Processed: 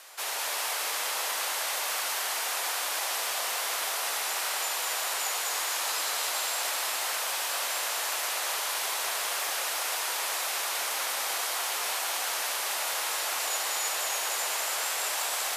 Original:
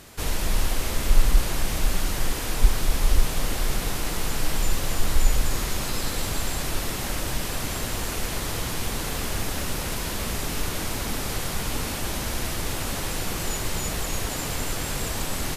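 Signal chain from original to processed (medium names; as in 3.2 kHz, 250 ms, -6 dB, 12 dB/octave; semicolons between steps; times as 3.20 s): high-pass 690 Hz 24 dB/octave; frequency shift -44 Hz; on a send: echo whose repeats swap between lows and highs 101 ms, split 1.4 kHz, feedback 80%, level -3.5 dB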